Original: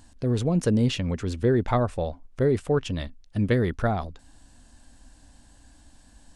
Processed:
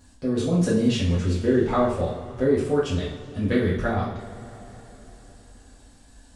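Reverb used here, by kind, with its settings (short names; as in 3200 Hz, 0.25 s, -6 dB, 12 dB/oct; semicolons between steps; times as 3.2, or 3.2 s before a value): two-slope reverb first 0.52 s, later 4.2 s, from -20 dB, DRR -8 dB; gain -6.5 dB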